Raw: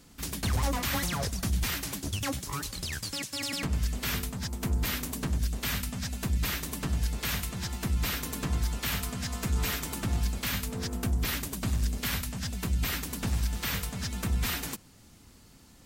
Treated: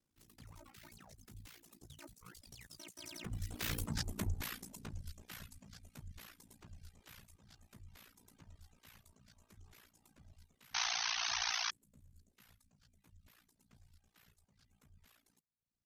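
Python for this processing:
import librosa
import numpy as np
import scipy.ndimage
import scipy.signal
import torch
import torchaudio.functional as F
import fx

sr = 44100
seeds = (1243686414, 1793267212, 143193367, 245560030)

y = fx.doppler_pass(x, sr, speed_mps=37, closest_m=7.3, pass_at_s=3.94)
y = fx.spec_paint(y, sr, seeds[0], shape='noise', start_s=10.74, length_s=0.97, low_hz=690.0, high_hz=6400.0, level_db=-33.0)
y = y * np.sin(2.0 * np.pi * 29.0 * np.arange(len(y)) / sr)
y = fx.dereverb_blind(y, sr, rt60_s=0.8)
y = F.gain(torch.from_numpy(y), 1.0).numpy()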